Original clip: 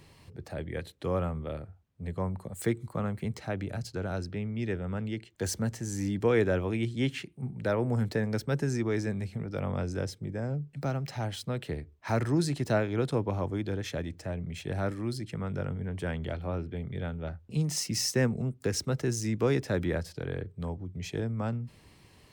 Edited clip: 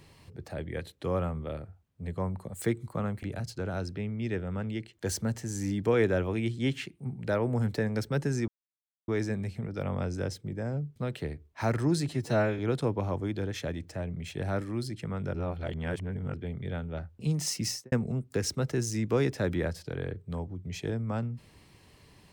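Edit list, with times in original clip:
0:03.23–0:03.60: remove
0:08.85: splice in silence 0.60 s
0:10.73–0:11.43: remove
0:12.55–0:12.89: time-stretch 1.5×
0:15.64–0:16.64: reverse
0:17.95–0:18.22: fade out and dull

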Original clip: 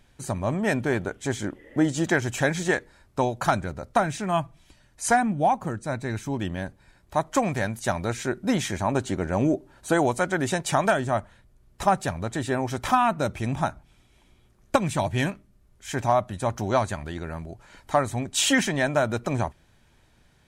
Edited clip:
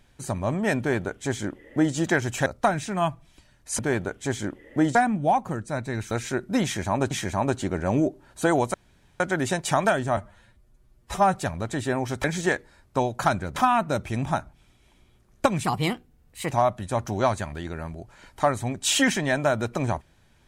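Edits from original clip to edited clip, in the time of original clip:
0:00.79–0:01.95: duplicate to 0:05.11
0:02.46–0:03.78: move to 0:12.86
0:06.27–0:08.05: remove
0:08.58–0:09.05: repeat, 2 plays
0:10.21: splice in room tone 0.46 s
0:11.18–0:11.96: time-stretch 1.5×
0:14.94–0:16.02: play speed 124%

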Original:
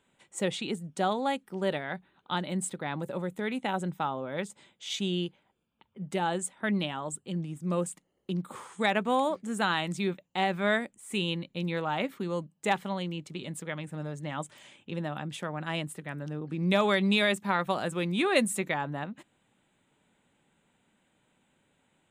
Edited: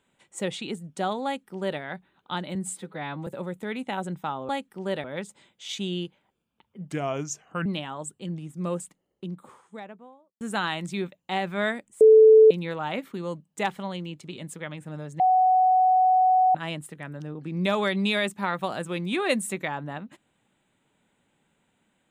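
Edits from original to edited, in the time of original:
0:01.25–0:01.80: duplicate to 0:04.25
0:02.55–0:03.03: time-stretch 1.5×
0:06.13–0:06.72: play speed 80%
0:07.69–0:09.47: fade out and dull
0:11.07–0:11.57: beep over 438 Hz −9.5 dBFS
0:14.26–0:15.61: beep over 744 Hz −16 dBFS

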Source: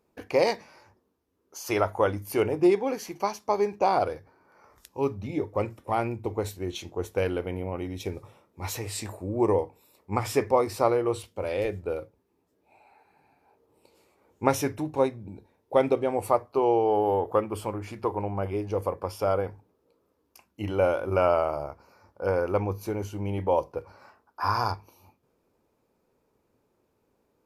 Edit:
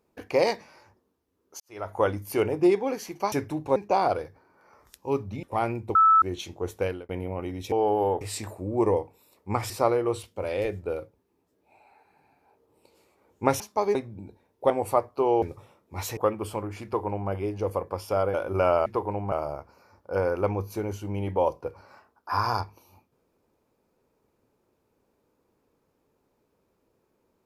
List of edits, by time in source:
0:01.60–0:02.00: fade in quadratic
0:03.32–0:03.67: swap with 0:14.60–0:15.04
0:05.34–0:05.79: remove
0:06.31–0:06.58: beep over 1,310 Hz −14 dBFS
0:07.16–0:07.45: fade out
0:08.08–0:08.83: swap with 0:16.79–0:17.28
0:10.32–0:10.70: remove
0:15.79–0:16.07: remove
0:17.95–0:18.41: duplicate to 0:21.43
0:19.45–0:20.91: remove

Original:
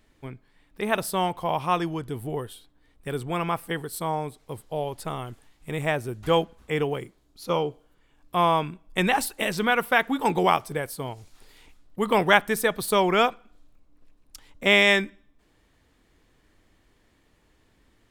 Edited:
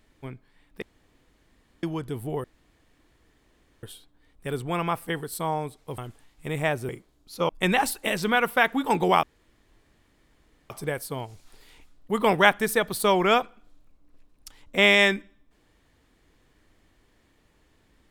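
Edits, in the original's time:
0:00.82–0:01.83: fill with room tone
0:02.44: splice in room tone 1.39 s
0:04.59–0:05.21: remove
0:06.12–0:06.98: remove
0:07.58–0:08.84: remove
0:10.58: splice in room tone 1.47 s

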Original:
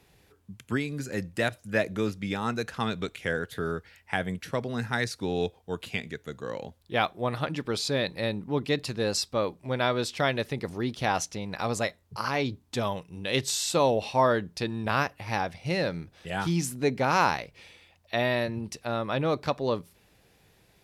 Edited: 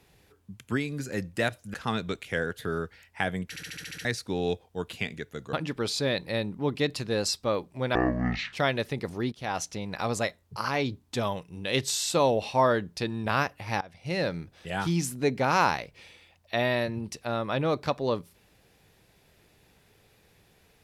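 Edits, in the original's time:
0:01.74–0:02.67: remove
0:04.42: stutter in place 0.07 s, 8 plays
0:06.46–0:07.42: remove
0:09.84–0:10.13: play speed 50%
0:10.92–0:11.33: fade in, from −14 dB
0:15.41–0:15.83: fade in, from −22 dB

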